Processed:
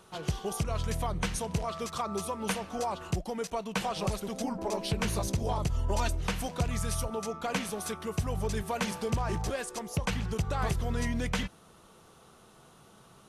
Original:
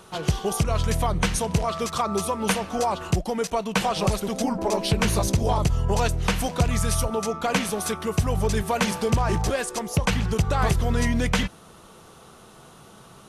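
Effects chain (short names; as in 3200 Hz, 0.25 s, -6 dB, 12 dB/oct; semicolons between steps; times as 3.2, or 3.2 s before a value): 5.74–6.21 comb 3.3 ms, depth 82%; gain -8.5 dB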